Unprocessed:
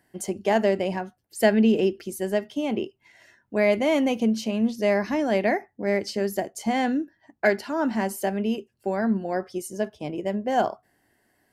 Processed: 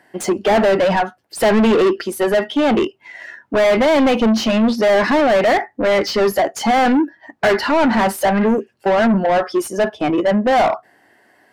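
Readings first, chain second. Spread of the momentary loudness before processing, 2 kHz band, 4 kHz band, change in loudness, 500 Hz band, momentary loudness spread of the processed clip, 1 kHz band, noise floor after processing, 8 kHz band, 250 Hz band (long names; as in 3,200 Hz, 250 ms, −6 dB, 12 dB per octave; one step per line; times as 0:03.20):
10 LU, +9.5 dB, +11.5 dB, +9.0 dB, +9.5 dB, 7 LU, +12.0 dB, −57 dBFS, +7.5 dB, +7.5 dB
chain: healed spectral selection 0:08.43–0:08.64, 1,100–5,700 Hz both
noise reduction from a noise print of the clip's start 8 dB
mid-hump overdrive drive 33 dB, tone 1,700 Hz, clips at −6 dBFS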